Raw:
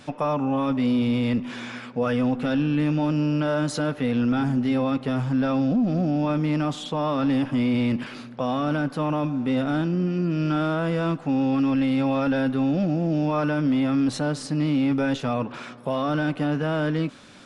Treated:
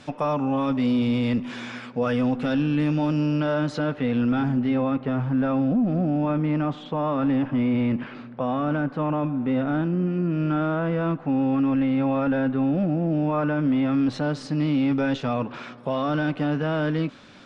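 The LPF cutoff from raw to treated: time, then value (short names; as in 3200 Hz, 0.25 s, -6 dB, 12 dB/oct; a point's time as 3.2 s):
3.16 s 8600 Hz
3.69 s 3700 Hz
4.42 s 3700 Hz
4.95 s 2200 Hz
13.46 s 2200 Hz
14.48 s 5000 Hz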